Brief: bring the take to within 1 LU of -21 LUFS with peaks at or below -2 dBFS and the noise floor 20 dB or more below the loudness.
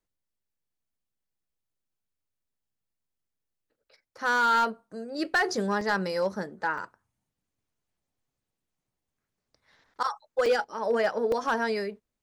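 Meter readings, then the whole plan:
clipped 0.4%; flat tops at -18.0 dBFS; dropouts 4; longest dropout 2.8 ms; loudness -27.5 LUFS; peak -18.0 dBFS; loudness target -21.0 LUFS
-> clip repair -18 dBFS; interpolate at 5.81/6.78/10.46/11.32, 2.8 ms; gain +6.5 dB

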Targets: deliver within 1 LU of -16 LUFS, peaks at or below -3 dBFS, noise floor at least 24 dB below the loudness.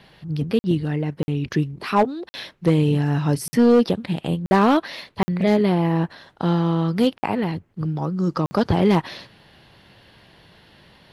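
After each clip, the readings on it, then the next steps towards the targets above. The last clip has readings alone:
clipped 1.0%; flat tops at -9.5 dBFS; dropouts 8; longest dropout 50 ms; loudness -21.5 LUFS; peak -9.5 dBFS; loudness target -16.0 LUFS
-> clip repair -9.5 dBFS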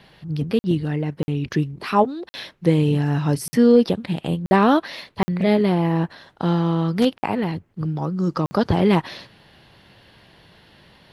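clipped 0.0%; dropouts 8; longest dropout 50 ms
-> interpolate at 0.59/1.23/2.29/3.48/4.46/5.23/7.18/8.46, 50 ms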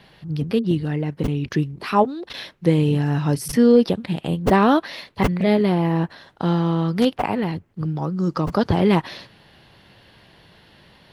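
dropouts 0; loudness -21.0 LUFS; peak -4.5 dBFS; loudness target -16.0 LUFS
-> gain +5 dB; limiter -3 dBFS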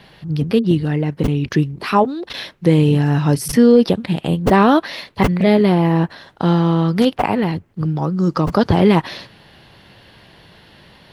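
loudness -16.5 LUFS; peak -3.0 dBFS; noise floor -48 dBFS

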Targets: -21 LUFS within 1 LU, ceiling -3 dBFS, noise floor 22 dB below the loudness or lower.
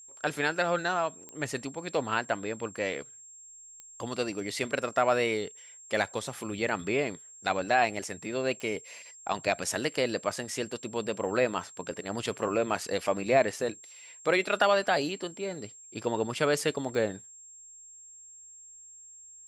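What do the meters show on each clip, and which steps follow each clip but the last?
clicks 4; steady tone 7500 Hz; tone level -48 dBFS; loudness -30.0 LUFS; peak -9.5 dBFS; loudness target -21.0 LUFS
-> de-click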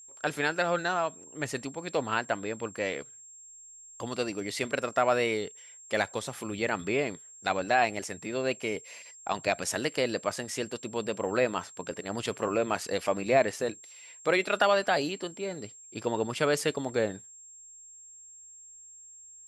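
clicks 0; steady tone 7500 Hz; tone level -48 dBFS
-> notch 7500 Hz, Q 30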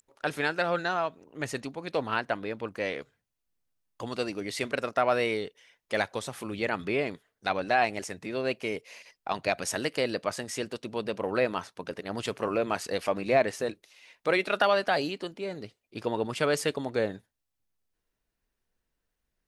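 steady tone none; loudness -30.5 LUFS; peak -9.5 dBFS; loudness target -21.0 LUFS
-> gain +9.5 dB; limiter -3 dBFS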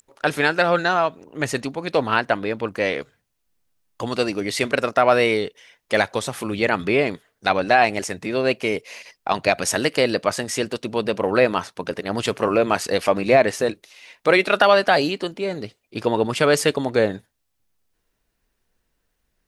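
loudness -21.0 LUFS; peak -3.0 dBFS; noise floor -74 dBFS

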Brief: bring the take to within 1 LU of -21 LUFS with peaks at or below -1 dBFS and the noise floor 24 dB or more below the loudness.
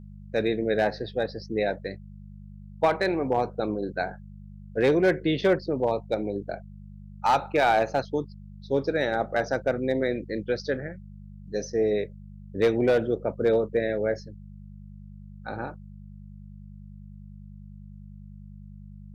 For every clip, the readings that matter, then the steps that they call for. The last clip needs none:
clipped 0.3%; flat tops at -14.5 dBFS; hum 50 Hz; harmonics up to 200 Hz; hum level -42 dBFS; loudness -26.5 LUFS; peak -14.5 dBFS; loudness target -21.0 LUFS
-> clip repair -14.5 dBFS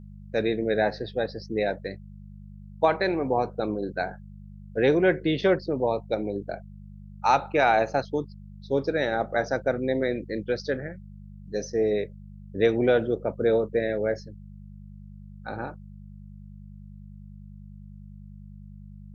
clipped 0.0%; hum 50 Hz; harmonics up to 200 Hz; hum level -41 dBFS
-> de-hum 50 Hz, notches 4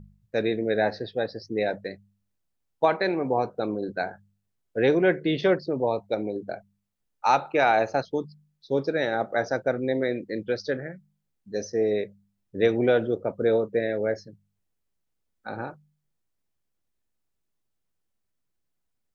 hum none; loudness -26.5 LUFS; peak -7.0 dBFS; loudness target -21.0 LUFS
-> gain +5.5 dB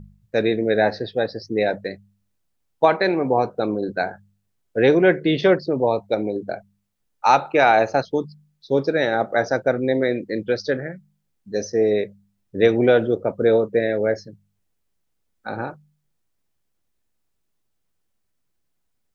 loudness -21.0 LUFS; peak -1.5 dBFS; noise floor -72 dBFS

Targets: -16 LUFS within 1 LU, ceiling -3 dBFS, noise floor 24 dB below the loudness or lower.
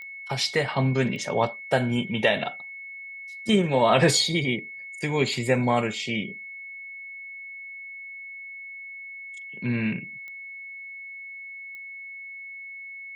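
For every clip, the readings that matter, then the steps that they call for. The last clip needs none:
clicks 4; steady tone 2200 Hz; tone level -37 dBFS; loudness -25.0 LUFS; peak -7.5 dBFS; loudness target -16.0 LUFS
-> de-click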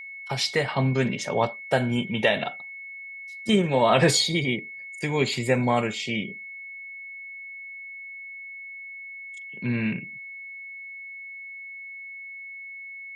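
clicks 0; steady tone 2200 Hz; tone level -37 dBFS
-> notch 2200 Hz, Q 30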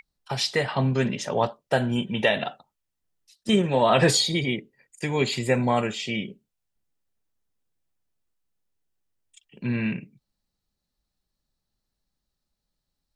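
steady tone none; loudness -24.5 LUFS; peak -7.5 dBFS; loudness target -16.0 LUFS
-> gain +8.5 dB; limiter -3 dBFS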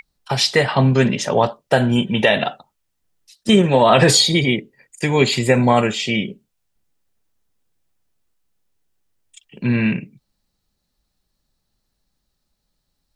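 loudness -16.5 LUFS; peak -3.0 dBFS; noise floor -74 dBFS

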